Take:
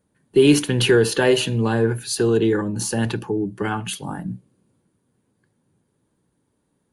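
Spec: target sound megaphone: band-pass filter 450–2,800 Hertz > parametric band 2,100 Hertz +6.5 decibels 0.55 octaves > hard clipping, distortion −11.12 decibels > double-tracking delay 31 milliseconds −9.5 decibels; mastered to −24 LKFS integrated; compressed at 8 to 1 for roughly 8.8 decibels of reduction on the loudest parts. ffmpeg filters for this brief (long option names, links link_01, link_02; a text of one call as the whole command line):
ffmpeg -i in.wav -filter_complex "[0:a]acompressor=threshold=-19dB:ratio=8,highpass=450,lowpass=2800,equalizer=frequency=2100:width_type=o:width=0.55:gain=6.5,asoftclip=type=hard:threshold=-25dB,asplit=2[link_01][link_02];[link_02]adelay=31,volume=-9.5dB[link_03];[link_01][link_03]amix=inputs=2:normalize=0,volume=6.5dB" out.wav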